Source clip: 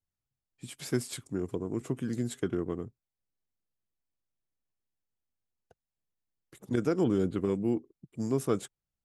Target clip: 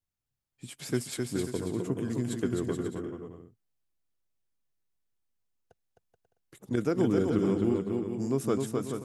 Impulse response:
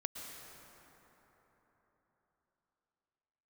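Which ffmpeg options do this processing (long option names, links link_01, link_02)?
-af "aecho=1:1:260|429|538.8|610.3|656.7:0.631|0.398|0.251|0.158|0.1"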